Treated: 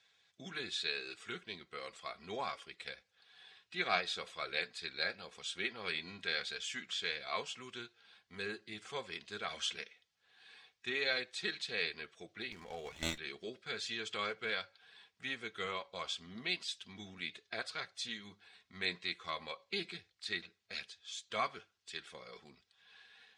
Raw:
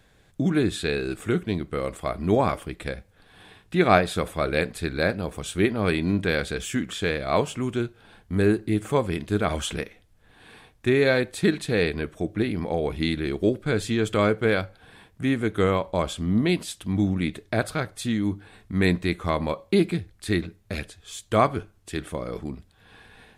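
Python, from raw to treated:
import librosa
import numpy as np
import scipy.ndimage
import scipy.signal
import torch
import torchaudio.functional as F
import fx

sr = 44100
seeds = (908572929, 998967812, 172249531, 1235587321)

y = fx.spec_quant(x, sr, step_db=15)
y = scipy.signal.sosfilt(scipy.signal.butter(4, 5300.0, 'lowpass', fs=sr, output='sos'), y)
y = np.diff(y, prepend=0.0)
y = fx.notch_comb(y, sr, f0_hz=300.0)
y = fx.running_max(y, sr, window=5, at=(12.52, 13.18))
y = y * 10.0 ** (4.0 / 20.0)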